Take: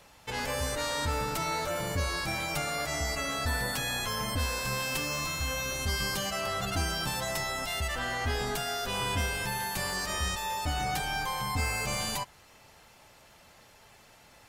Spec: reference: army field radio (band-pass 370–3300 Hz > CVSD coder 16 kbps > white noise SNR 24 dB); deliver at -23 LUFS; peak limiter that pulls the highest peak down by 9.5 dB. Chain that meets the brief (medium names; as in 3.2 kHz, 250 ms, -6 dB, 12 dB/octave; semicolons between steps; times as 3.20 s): peak limiter -28 dBFS; band-pass 370–3300 Hz; CVSD coder 16 kbps; white noise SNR 24 dB; trim +15 dB